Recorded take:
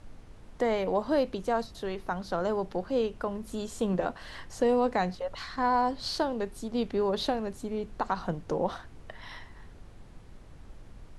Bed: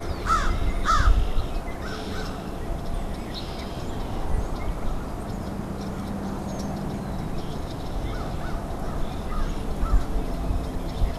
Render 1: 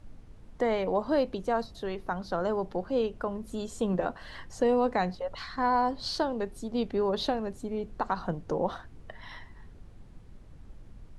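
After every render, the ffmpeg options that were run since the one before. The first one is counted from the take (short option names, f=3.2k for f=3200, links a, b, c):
-af "afftdn=nr=6:nf=-50"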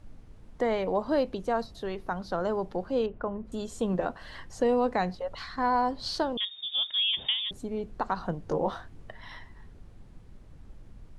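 -filter_complex "[0:a]asettb=1/sr,asplit=3[a][b][c];[a]atrim=end=3.064[d];[b]atrim=start=3.06:end=3.52,asetpts=PTS-STARTPTS,afade=t=in:d=0.004:c=qsin,afade=t=out:st=0.456:d=0.004:c=qsin,lowpass=1.9k[e];[c]atrim=start=3.516[f];[d][e]acrossfade=d=0.004:c1=hsin:c2=qsin[g];[g][f]acrossfade=d=0.004:c1=qsin:c2=hsin,asettb=1/sr,asplit=3[h][i][j];[h]atrim=end=6.374[k];[i]atrim=start=6.37:end=7.51,asetpts=PTS-STARTPTS,afade=t=in:d=0.004:c=qsin,afade=t=out:st=1.136:d=0.004:c=qsin,lowpass=f=3.1k:t=q:w=0.5098,lowpass=f=3.1k:t=q:w=0.6013,lowpass=f=3.1k:t=q:w=0.9,lowpass=f=3.1k:t=q:w=2.563,afreqshift=-3700[l];[j]atrim=start=7.506[m];[k][l]acrossfade=d=0.004:c1=hsin:c2=qsin[n];[n][m]acrossfade=d=0.004:c1=qsin:c2=hsin,asettb=1/sr,asplit=3[o][p][q];[o]atrim=end=8.404[r];[p]atrim=start=8.4:end=9.11,asetpts=PTS-STARTPTS,afade=t=in:d=0.004:c=qsin,afade=t=out:st=0.706:d=0.004:c=qsin,asplit=2[s][t];[t]adelay=20,volume=-5.5dB[u];[s][u]amix=inputs=2:normalize=0,atrim=end_sample=31311[v];[q]atrim=start=9.106[w];[r][v]acrossfade=d=0.004:c1=hsin:c2=qsin[x];[x][w]acrossfade=d=0.004:c1=qsin:c2=hsin"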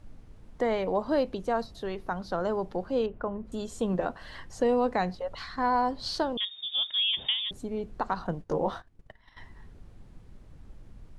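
-filter_complex "[0:a]asettb=1/sr,asplit=3[a][b][c];[a]atrim=end=8.134[d];[b]atrim=start=8.13:end=9.38,asetpts=PTS-STARTPTS,afade=t=in:d=0.004:c=qsin,afade=t=out:st=1.246:d=0.004:c=qsin,agate=range=-17dB:threshold=-42dB:ratio=16:release=100:detection=peak[e];[c]atrim=start=9.376[f];[d][e]acrossfade=d=0.004:c1=hsin:c2=qsin[g];[g][f]acrossfade=d=0.004:c1=qsin:c2=hsin"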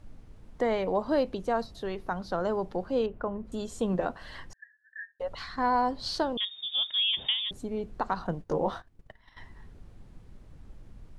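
-filter_complex "[0:a]asettb=1/sr,asplit=3[a][b][c];[a]atrim=end=4.534[d];[b]atrim=start=4.53:end=5.2,asetpts=PTS-STARTPTS,afade=t=in:d=0.004:c=qsin,afade=t=out:st=0.666:d=0.004:c=qsin,asuperpass=centerf=1700:order=12:qfactor=6.7[e];[c]atrim=start=5.196[f];[d][e]acrossfade=d=0.004:c1=hsin:c2=qsin[g];[g][f]acrossfade=d=0.004:c1=qsin:c2=hsin"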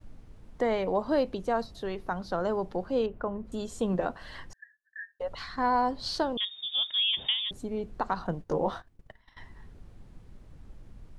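-af "agate=range=-33dB:threshold=-53dB:ratio=3:detection=peak"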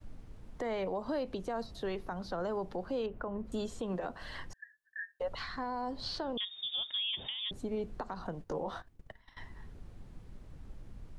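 -filter_complex "[0:a]acrossover=split=330|700|4500[a][b][c][d];[a]acompressor=threshold=-36dB:ratio=4[e];[b]acompressor=threshold=-32dB:ratio=4[f];[c]acompressor=threshold=-34dB:ratio=4[g];[d]acompressor=threshold=-56dB:ratio=4[h];[e][f][g][h]amix=inputs=4:normalize=0,alimiter=level_in=3.5dB:limit=-24dB:level=0:latency=1:release=143,volume=-3.5dB"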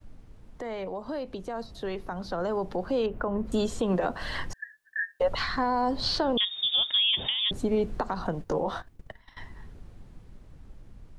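-af "dynaudnorm=f=260:g=21:m=11dB"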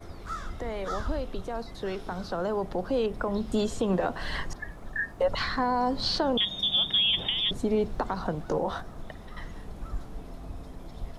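-filter_complex "[1:a]volume=-14dB[a];[0:a][a]amix=inputs=2:normalize=0"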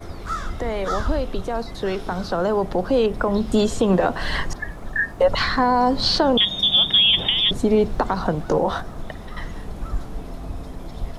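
-af "volume=8.5dB"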